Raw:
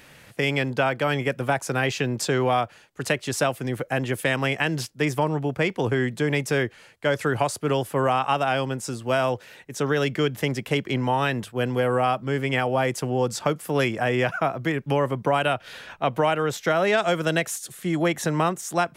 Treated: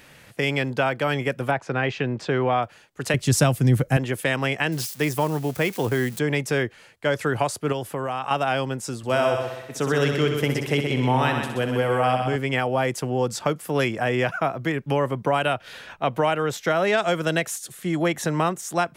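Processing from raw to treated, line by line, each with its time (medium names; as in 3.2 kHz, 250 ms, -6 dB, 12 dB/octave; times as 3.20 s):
1.51–2.63 s: low-pass 3 kHz
3.14–3.97 s: tone controls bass +15 dB, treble +7 dB
4.72–6.19 s: zero-crossing glitches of -27.5 dBFS
7.72–8.31 s: compression, threshold -23 dBFS
8.97–12.36 s: multi-head delay 63 ms, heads first and second, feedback 49%, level -8 dB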